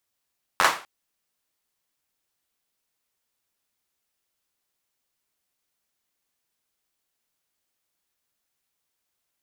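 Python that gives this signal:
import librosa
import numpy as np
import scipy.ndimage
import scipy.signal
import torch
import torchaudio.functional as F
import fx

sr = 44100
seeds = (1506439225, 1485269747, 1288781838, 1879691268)

y = fx.drum_clap(sr, seeds[0], length_s=0.25, bursts=5, spacing_ms=11, hz=1100.0, decay_s=0.35)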